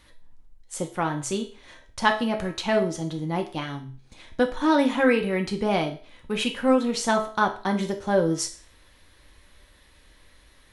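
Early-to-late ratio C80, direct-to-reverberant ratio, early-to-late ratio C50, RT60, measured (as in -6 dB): 16.0 dB, 2.5 dB, 11.0 dB, 0.40 s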